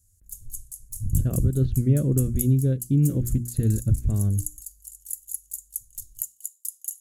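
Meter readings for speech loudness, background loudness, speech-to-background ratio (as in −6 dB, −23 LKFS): −23.5 LKFS, −35.5 LKFS, 12.0 dB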